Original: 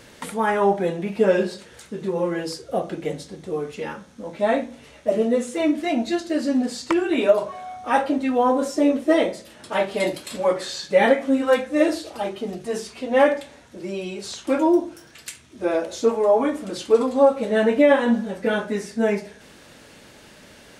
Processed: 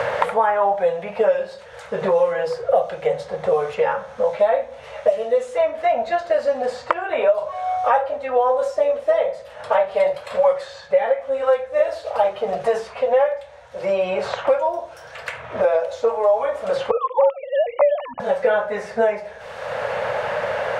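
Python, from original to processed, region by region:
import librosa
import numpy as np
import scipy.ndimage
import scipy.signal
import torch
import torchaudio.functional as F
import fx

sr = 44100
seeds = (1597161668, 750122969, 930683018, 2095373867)

y = fx.chain(x, sr, fx.sine_speech(),
    fx.fixed_phaser(hz=1600.0, stages=6), at=(16.91, 18.2))
y = fx.rider(y, sr, range_db=5, speed_s=0.5)
y = fx.curve_eq(y, sr, hz=(110.0, 320.0, 510.0, 1100.0, 11000.0), db=(0, -27, 8, 4, -15))
y = fx.band_squash(y, sr, depth_pct=100)
y = F.gain(torch.from_numpy(y), -1.0).numpy()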